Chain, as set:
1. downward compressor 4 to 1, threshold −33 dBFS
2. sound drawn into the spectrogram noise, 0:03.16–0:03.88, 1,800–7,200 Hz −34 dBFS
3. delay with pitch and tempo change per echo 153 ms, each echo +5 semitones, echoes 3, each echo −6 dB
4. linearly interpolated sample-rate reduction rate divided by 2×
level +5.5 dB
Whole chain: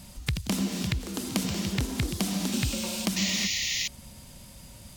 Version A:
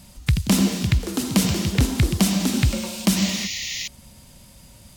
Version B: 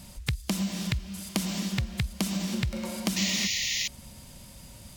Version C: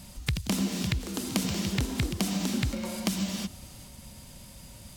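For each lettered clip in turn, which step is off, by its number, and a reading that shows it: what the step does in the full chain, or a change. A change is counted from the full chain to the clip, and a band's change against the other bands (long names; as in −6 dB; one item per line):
1, change in momentary loudness spread −15 LU
3, 500 Hz band −1.5 dB
2, 4 kHz band −5.0 dB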